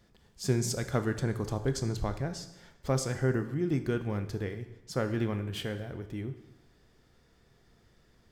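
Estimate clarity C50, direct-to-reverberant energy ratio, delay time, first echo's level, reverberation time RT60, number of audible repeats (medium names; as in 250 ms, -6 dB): 11.5 dB, 8.5 dB, no echo, no echo, 0.95 s, no echo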